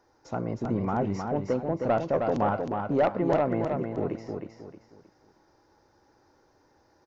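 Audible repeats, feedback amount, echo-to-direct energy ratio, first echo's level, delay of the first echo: 4, 33%, -4.5 dB, -5.0 dB, 0.313 s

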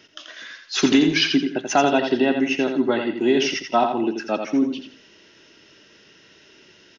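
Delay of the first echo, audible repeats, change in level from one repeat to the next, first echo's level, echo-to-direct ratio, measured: 85 ms, 3, -10.0 dB, -6.5 dB, -6.0 dB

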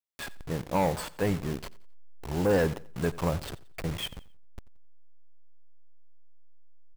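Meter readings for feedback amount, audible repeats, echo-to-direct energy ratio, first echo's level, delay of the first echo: 34%, 2, -19.5 dB, -20.0 dB, 88 ms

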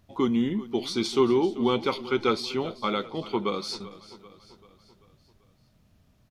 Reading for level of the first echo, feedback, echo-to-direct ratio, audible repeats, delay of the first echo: -17.0 dB, 52%, -15.5 dB, 4, 0.389 s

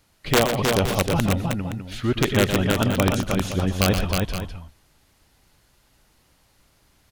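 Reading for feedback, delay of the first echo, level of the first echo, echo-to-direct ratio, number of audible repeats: no steady repeat, 0.121 s, -8.5 dB, -2.0 dB, 3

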